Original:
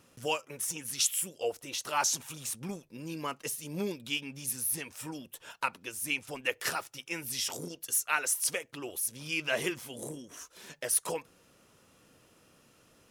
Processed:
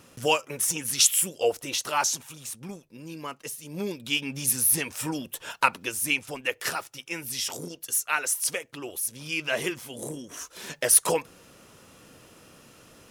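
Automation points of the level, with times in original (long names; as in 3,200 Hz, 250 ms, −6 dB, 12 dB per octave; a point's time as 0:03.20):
0:01.69 +8.5 dB
0:02.30 −0.5 dB
0:03.65 −0.5 dB
0:04.37 +10 dB
0:05.83 +10 dB
0:06.46 +3 dB
0:09.85 +3 dB
0:10.65 +10 dB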